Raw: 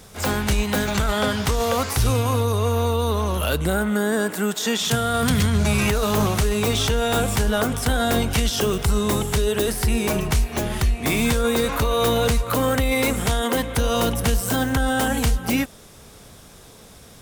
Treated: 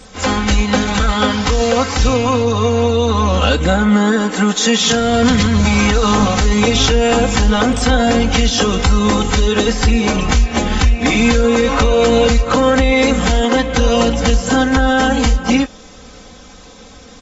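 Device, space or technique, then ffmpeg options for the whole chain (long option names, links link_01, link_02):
low-bitrate web radio: -af "aecho=1:1:3.9:0.82,dynaudnorm=framelen=300:gausssize=21:maxgain=11.5dB,alimiter=limit=-8dB:level=0:latency=1:release=354,volume=4.5dB" -ar 24000 -c:a aac -b:a 24k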